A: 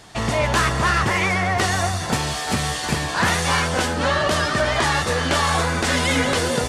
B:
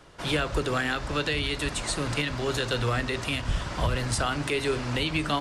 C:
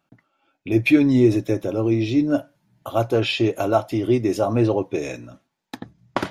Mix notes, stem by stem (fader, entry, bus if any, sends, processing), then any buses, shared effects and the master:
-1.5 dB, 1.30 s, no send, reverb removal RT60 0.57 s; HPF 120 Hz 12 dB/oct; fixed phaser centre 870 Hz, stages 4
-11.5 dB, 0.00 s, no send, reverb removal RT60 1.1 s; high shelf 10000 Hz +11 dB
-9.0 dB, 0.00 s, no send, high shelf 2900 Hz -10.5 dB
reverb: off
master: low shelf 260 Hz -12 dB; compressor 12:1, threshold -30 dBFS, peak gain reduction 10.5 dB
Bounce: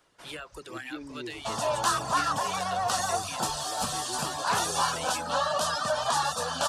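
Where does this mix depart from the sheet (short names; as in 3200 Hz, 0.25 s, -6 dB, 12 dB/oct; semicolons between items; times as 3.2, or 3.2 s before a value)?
stem C -9.0 dB -> -20.0 dB; master: missing compressor 12:1, threshold -30 dBFS, peak gain reduction 10.5 dB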